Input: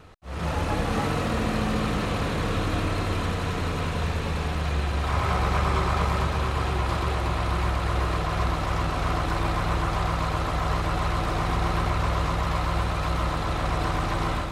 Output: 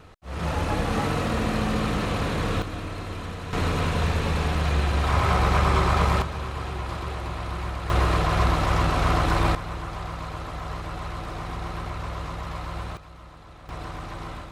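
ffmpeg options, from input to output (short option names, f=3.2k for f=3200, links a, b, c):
-af "asetnsamples=n=441:p=0,asendcmd='2.62 volume volume -7dB;3.53 volume volume 3dB;6.22 volume volume -5.5dB;7.9 volume volume 4dB;9.55 volume volume -7.5dB;12.97 volume volume -19.5dB;13.69 volume volume -9.5dB',volume=0.5dB"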